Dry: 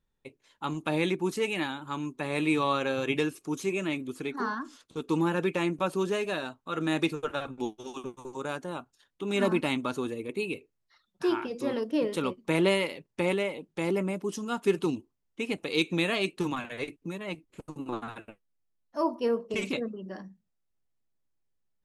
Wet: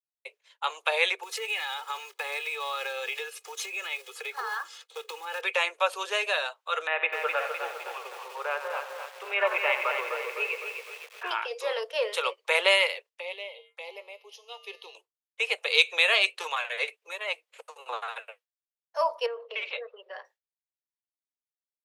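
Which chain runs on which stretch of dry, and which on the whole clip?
1.23–5.43 s: block-companded coder 5-bit + comb 2.4 ms, depth 73% + compression 12:1, threshold -32 dBFS
6.87–11.31 s: steep low-pass 2.6 kHz + feedback delay 90 ms, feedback 58%, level -11 dB + bit-crushed delay 255 ms, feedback 55%, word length 8-bit, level -6 dB
13.09–14.95 s: feedback comb 92 Hz, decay 1 s, harmonics odd, mix 70% + touch-sensitive phaser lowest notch 180 Hz, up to 1.5 kHz, full sweep at -41.5 dBFS
19.26–20.25 s: low-pass 3.8 kHz 24 dB/octave + compression 3:1, threshold -35 dBFS
whole clip: steep high-pass 460 Hz 72 dB/octave; expander -58 dBFS; peaking EQ 2.8 kHz +7.5 dB 1.8 oct; trim +2.5 dB

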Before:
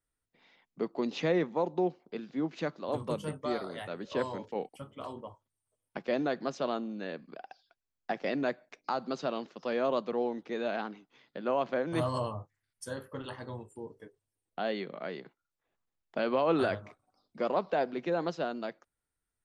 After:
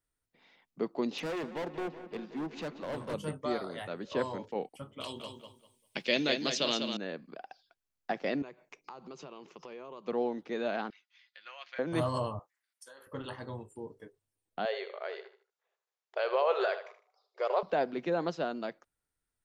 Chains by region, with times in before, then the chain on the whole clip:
1.18–3.14 s: high-pass 150 Hz + hard clipper -33.5 dBFS + filtered feedback delay 185 ms, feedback 72%, low-pass 4.9 kHz, level -13 dB
5.00–6.97 s: resonant high shelf 1.9 kHz +13 dB, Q 1.5 + band-stop 720 Hz, Q 10 + feedback delay 198 ms, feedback 23%, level -6.5 dB
8.42–10.08 s: rippled EQ curve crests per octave 0.74, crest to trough 8 dB + compression 5:1, threshold -44 dBFS
10.90–11.79 s: Chebyshev band-pass 2–5.8 kHz + comb 5.6 ms, depth 46%
12.39–13.07 s: high-pass 680 Hz + compression 12:1, threshold -48 dBFS
14.65–17.63 s: brick-wall FIR band-pass 370–7600 Hz + feedback delay 77 ms, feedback 30%, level -11 dB
whole clip: none

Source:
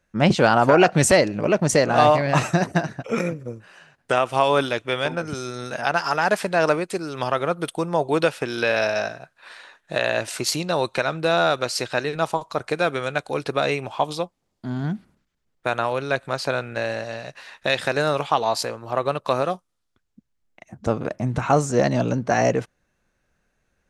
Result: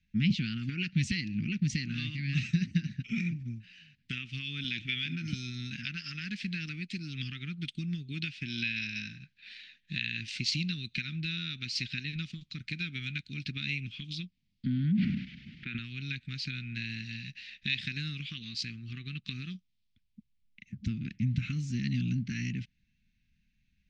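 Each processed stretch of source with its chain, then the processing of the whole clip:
4.64–5.35 s: high-pass 170 Hz 6 dB/octave + companded quantiser 8-bit + level flattener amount 50%
14.66–15.79 s: band-pass 160–2500 Hz + level flattener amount 100%
whole clip: low-pass 4.7 kHz 24 dB/octave; compression 2.5:1, threshold -24 dBFS; elliptic band-stop 220–2300 Hz, stop band 60 dB

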